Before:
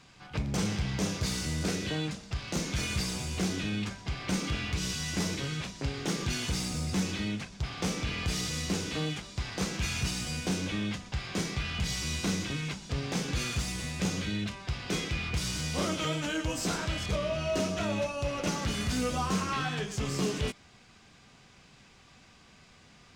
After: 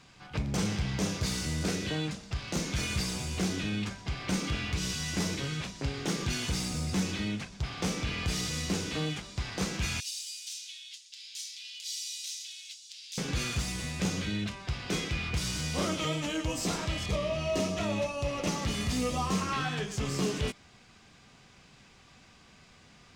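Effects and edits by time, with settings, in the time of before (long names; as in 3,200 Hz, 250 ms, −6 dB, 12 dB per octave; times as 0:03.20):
0:10.00–0:13.18: inverse Chebyshev high-pass filter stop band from 570 Hz, stop band 80 dB
0:15.98–0:19.42: notch filter 1,500 Hz, Q 6.6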